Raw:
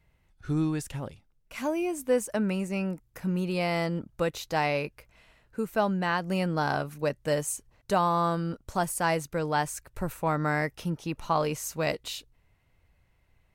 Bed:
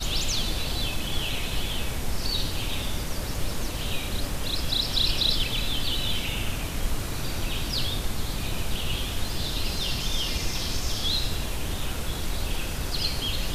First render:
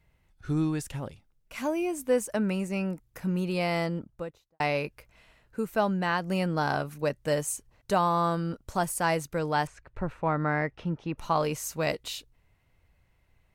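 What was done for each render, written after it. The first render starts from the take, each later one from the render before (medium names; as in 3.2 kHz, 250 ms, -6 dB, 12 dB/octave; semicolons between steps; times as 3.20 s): 3.75–4.60 s: studio fade out; 9.67–11.18 s: low-pass 2.6 kHz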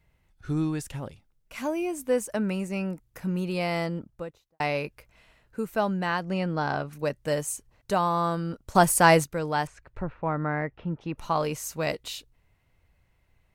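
6.23–6.93 s: distance through air 88 m; 8.75–9.24 s: gain +9 dB; 10.02–11.01 s: distance through air 300 m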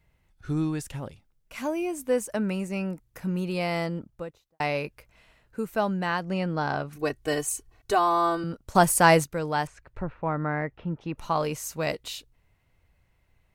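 6.96–8.44 s: comb 2.7 ms, depth 96%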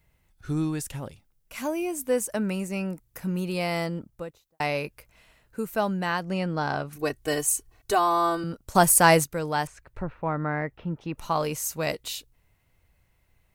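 treble shelf 7.4 kHz +9.5 dB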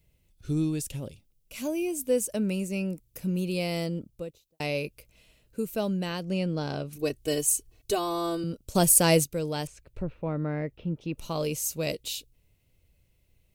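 high-order bell 1.2 kHz -11.5 dB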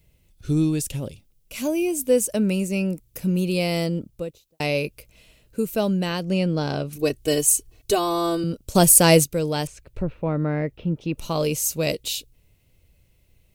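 trim +6.5 dB; peak limiter -1 dBFS, peak gain reduction 1 dB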